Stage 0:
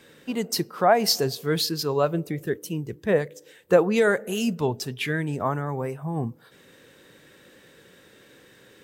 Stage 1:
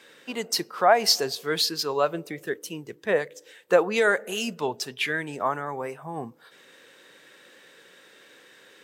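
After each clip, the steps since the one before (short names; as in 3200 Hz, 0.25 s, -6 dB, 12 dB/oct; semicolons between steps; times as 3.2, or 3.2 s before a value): weighting filter A; gain +1.5 dB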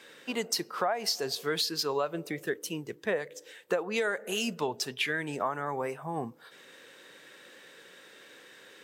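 compressor 8:1, threshold -26 dBFS, peak gain reduction 13.5 dB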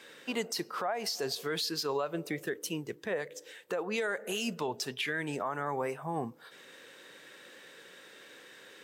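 limiter -23.5 dBFS, peak gain reduction 8.5 dB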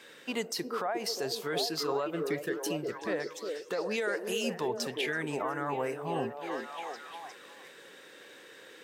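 delay with a stepping band-pass 0.356 s, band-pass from 370 Hz, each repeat 0.7 oct, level -1 dB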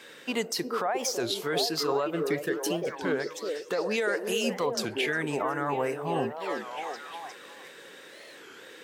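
record warp 33 1/3 rpm, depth 250 cents; gain +4 dB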